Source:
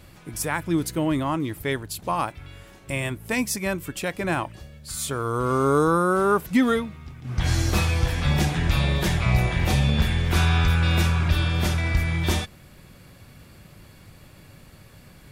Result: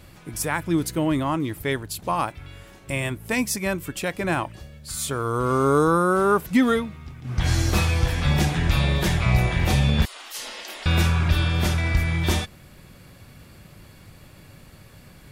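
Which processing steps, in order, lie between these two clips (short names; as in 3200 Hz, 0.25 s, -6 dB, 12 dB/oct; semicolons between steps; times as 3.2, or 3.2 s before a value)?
10.05–10.86 spectral gate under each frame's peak -30 dB weak; gain +1 dB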